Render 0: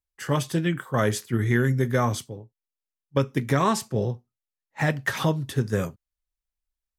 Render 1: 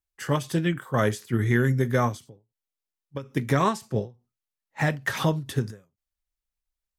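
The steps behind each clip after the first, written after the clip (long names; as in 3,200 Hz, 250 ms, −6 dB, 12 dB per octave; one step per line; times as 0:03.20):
every ending faded ahead of time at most 200 dB per second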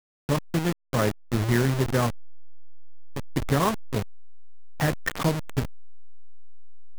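hold until the input has moved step −22 dBFS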